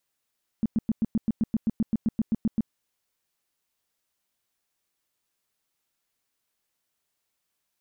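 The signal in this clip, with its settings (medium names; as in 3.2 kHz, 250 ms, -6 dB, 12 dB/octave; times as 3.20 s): tone bursts 222 Hz, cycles 6, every 0.13 s, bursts 16, -19.5 dBFS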